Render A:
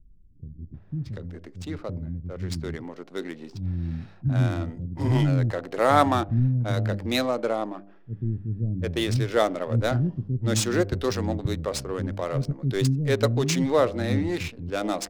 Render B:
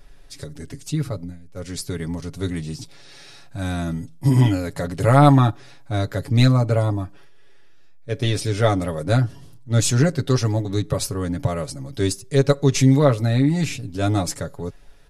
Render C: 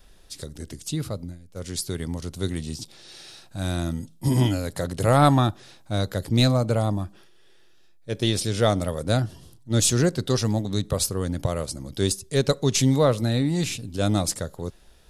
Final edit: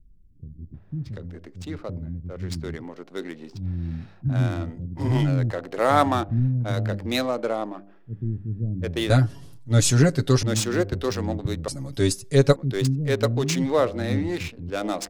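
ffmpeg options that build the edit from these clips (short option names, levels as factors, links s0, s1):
-filter_complex "[1:a]asplit=2[s0][s1];[0:a]asplit=3[s2][s3][s4];[s2]atrim=end=9.102[s5];[s0]atrim=start=9.098:end=10.432[s6];[s3]atrim=start=10.428:end=11.682[s7];[s1]atrim=start=11.678:end=12.562[s8];[s4]atrim=start=12.558[s9];[s5][s6]acrossfade=d=0.004:c1=hsin:c2=hsin[s10];[s10][s7]acrossfade=d=0.004:c1=hsin:c2=hsin[s11];[s11][s8]acrossfade=d=0.004:c1=hsin:c2=hsin[s12];[s12][s9]acrossfade=d=0.004:c1=hsin:c2=hsin"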